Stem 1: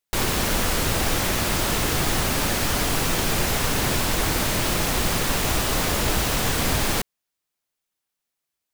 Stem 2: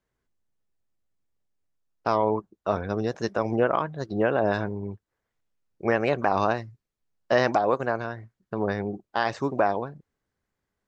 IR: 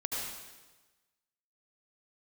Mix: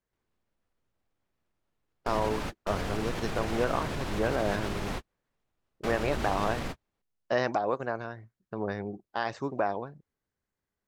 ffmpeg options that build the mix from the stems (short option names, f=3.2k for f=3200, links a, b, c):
-filter_complex "[0:a]aemphasis=mode=reproduction:type=75fm,alimiter=limit=-19dB:level=0:latency=1:release=111,volume=-5.5dB[a];[1:a]volume=-6dB,asplit=2[b][c];[c]apad=whole_len=385418[d];[a][d]sidechaingate=range=-50dB:threshold=-45dB:ratio=16:detection=peak[e];[e][b]amix=inputs=2:normalize=0"